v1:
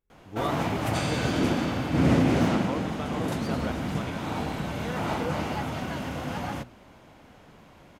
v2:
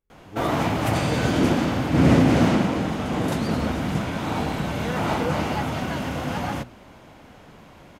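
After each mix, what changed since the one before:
first sound +5.0 dB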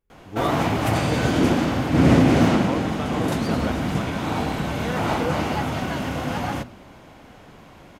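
speech +4.5 dB; reverb: on, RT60 1.0 s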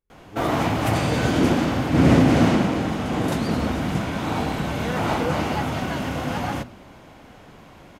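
speech -6.0 dB

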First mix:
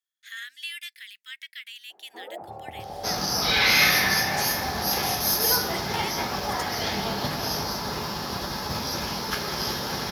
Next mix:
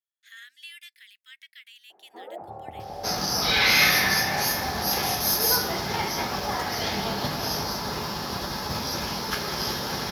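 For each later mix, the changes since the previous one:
speech -8.0 dB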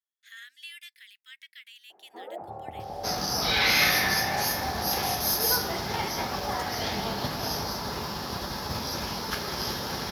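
second sound: send -6.0 dB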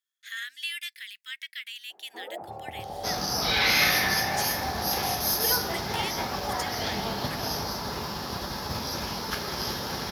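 speech +10.0 dB

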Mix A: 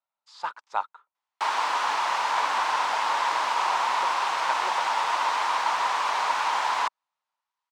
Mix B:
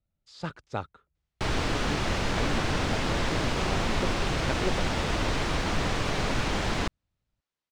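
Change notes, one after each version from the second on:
master: remove resonant high-pass 950 Hz, resonance Q 5.6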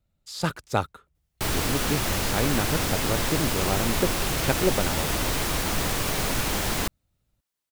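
speech +8.0 dB; master: remove distance through air 120 m

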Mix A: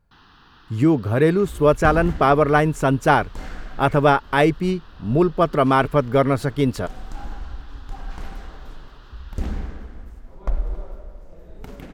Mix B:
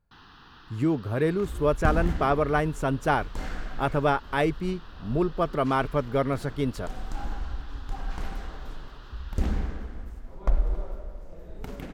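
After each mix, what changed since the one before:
speech -8.0 dB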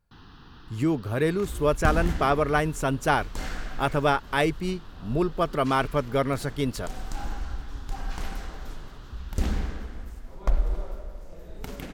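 first sound: add tilt shelf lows +7.5 dB, about 650 Hz; master: add treble shelf 2.5 kHz +8.5 dB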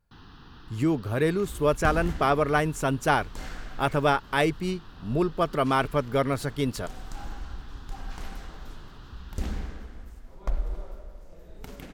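second sound -5.0 dB

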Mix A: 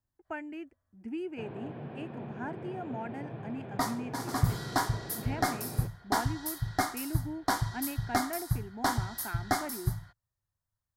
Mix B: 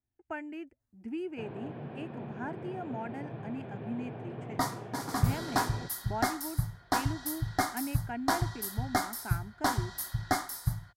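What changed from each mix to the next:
second sound: entry +0.80 s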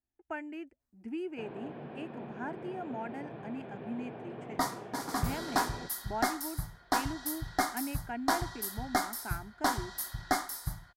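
master: add peaking EQ 110 Hz -11 dB 0.89 oct

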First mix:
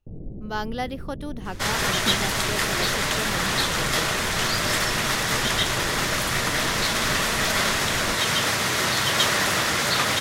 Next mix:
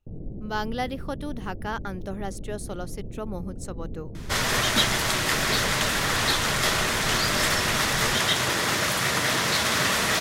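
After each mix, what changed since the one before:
second sound: entry +2.70 s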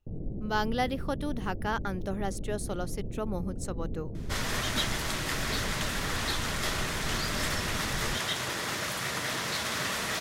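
second sound -8.5 dB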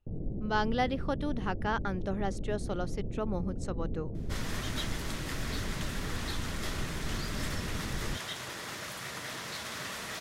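speech: add distance through air 80 m; second sound -7.5 dB

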